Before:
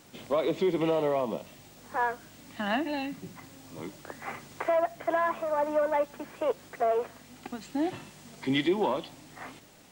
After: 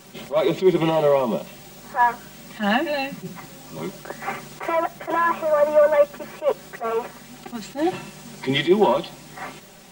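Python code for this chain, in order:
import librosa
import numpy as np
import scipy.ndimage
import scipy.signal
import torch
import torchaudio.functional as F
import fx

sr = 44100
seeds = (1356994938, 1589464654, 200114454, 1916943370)

y = x + 0.81 * np.pad(x, (int(5.2 * sr / 1000.0), 0))[:len(x)]
y = fx.attack_slew(y, sr, db_per_s=290.0)
y = F.gain(torch.from_numpy(y), 7.0).numpy()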